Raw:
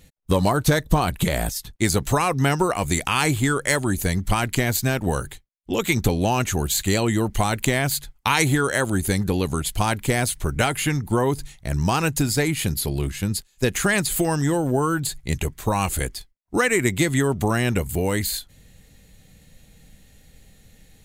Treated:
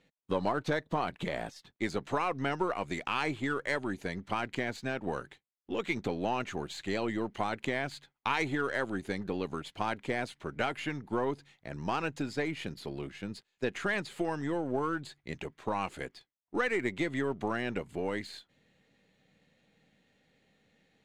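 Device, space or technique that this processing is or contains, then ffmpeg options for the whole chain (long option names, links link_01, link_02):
crystal radio: -af "highpass=230,lowpass=3100,aeval=exprs='if(lt(val(0),0),0.708*val(0),val(0))':channel_layout=same,volume=-8dB"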